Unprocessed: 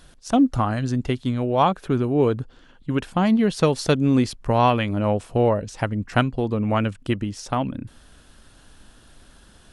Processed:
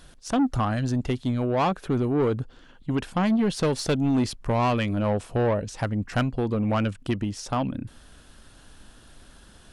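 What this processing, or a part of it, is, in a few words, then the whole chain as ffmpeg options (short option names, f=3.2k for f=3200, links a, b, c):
saturation between pre-emphasis and de-emphasis: -af "highshelf=f=6.4k:g=11.5,asoftclip=type=tanh:threshold=-17.5dB,highshelf=f=6.4k:g=-11.5"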